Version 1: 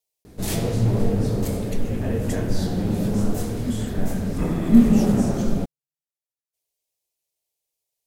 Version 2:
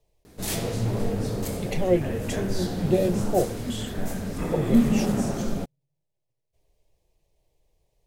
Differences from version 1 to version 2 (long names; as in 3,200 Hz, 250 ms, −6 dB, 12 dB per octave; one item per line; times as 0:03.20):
speech: remove first difference
master: add low-shelf EQ 490 Hz −7 dB